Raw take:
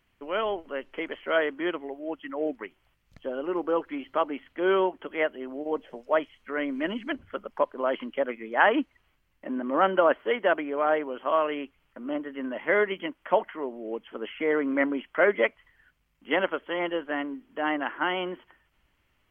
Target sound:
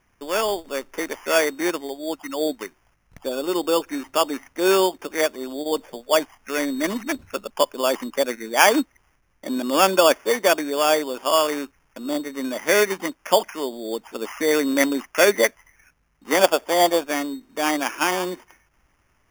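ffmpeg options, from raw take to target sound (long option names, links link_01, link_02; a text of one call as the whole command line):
ffmpeg -i in.wav -filter_complex "[0:a]asettb=1/sr,asplit=3[link_01][link_02][link_03];[link_01]atrim=end=16.394[link_04];[link_02]atrim=start=16.39:end=17.04,asetpts=PTS-STARTPTS,afade=type=in:duration=0.004:curve=qsin,afade=type=out:start_time=0.646:duration=0.004:curve=qsin,equalizer=frequency=710:width_type=o:width=0.63:gain=14[link_05];[link_03]atrim=start=17.036[link_06];[link_04][link_05]acrossfade=duration=0.004:curve1=hsin:curve2=qsin[link_07];[link_07][link_06]acrossfade=duration=0.004:curve1=qsin:curve2=hsin,acrusher=samples=11:mix=1:aa=0.000001,volume=5.5dB" out.wav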